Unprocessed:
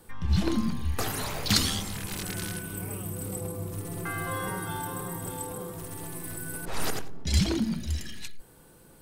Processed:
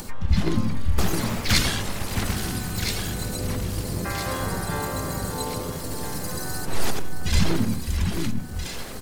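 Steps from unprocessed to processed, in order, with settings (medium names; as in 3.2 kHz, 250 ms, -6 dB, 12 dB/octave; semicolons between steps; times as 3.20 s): upward compressor, threshold -30 dBFS; echo whose repeats swap between lows and highs 661 ms, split 2.5 kHz, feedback 69%, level -4 dB; harmony voices -12 st -1 dB, -3 st -8 dB, +3 st -7 dB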